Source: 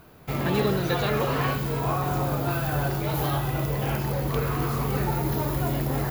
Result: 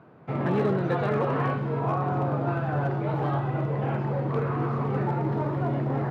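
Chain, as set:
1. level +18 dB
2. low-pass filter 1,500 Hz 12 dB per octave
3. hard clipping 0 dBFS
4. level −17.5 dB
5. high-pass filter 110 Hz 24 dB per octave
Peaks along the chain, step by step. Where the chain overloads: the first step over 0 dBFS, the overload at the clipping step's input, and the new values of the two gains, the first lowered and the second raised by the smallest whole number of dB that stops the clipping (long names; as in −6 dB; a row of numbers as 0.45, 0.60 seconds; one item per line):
+6.5, +6.0, 0.0, −17.5, −14.0 dBFS
step 1, 6.0 dB
step 1 +12 dB, step 4 −11.5 dB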